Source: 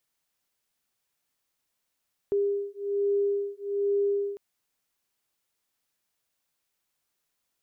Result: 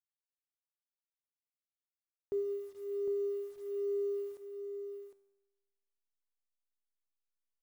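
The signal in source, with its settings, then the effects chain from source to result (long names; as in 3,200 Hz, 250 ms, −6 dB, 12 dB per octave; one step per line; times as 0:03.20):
two tones that beat 402 Hz, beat 1.2 Hz, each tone −27.5 dBFS 2.05 s
hold until the input has moved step −50 dBFS
tuned comb filter 99 Hz, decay 1.1 s, harmonics all, mix 70%
on a send: single-tap delay 757 ms −7.5 dB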